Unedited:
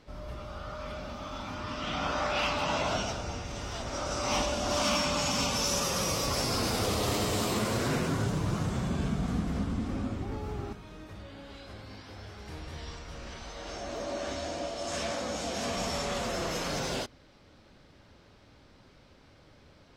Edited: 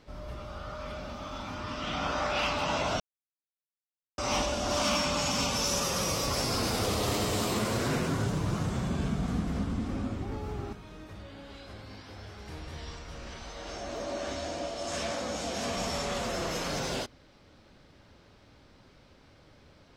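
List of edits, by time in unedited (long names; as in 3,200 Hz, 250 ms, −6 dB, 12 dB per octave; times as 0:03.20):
0:03.00–0:04.18: silence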